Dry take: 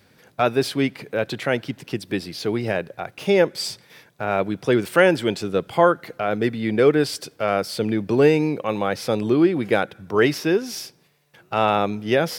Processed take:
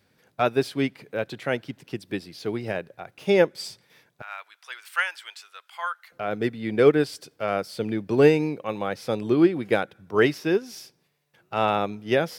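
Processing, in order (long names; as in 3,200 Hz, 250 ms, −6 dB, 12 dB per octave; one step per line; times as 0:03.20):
0:04.22–0:06.12: high-pass filter 1,100 Hz 24 dB per octave
expander for the loud parts 1.5 to 1, over −30 dBFS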